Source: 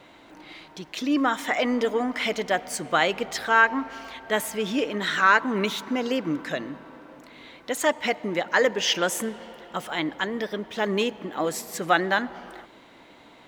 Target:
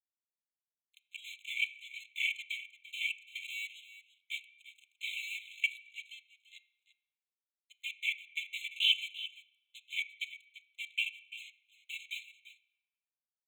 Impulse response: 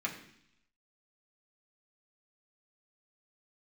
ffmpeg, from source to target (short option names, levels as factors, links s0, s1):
-filter_complex "[0:a]agate=range=0.0224:threshold=0.0141:ratio=3:detection=peak,highpass=f=700:w=0.5412,highpass=f=700:w=1.3066,afwtdn=0.0355,acrossover=split=4700[s0][s1];[s1]acompressor=threshold=0.00112:ratio=4:attack=1:release=60[s2];[s0][s2]amix=inputs=2:normalize=0,aecho=1:1:2.6:0.88,acompressor=threshold=0.0562:ratio=2,aeval=exprs='sgn(val(0))*max(abs(val(0))-0.0075,0)':c=same,asuperstop=centerf=1800:order=4:qfactor=3.1,aecho=1:1:342:0.188,asplit=2[s3][s4];[1:a]atrim=start_sample=2205,lowpass=7000[s5];[s4][s5]afir=irnorm=-1:irlink=0,volume=0.355[s6];[s3][s6]amix=inputs=2:normalize=0,afftfilt=real='re*eq(mod(floor(b*sr/1024/2100),2),1)':imag='im*eq(mod(floor(b*sr/1024/2100),2),1)':win_size=1024:overlap=0.75"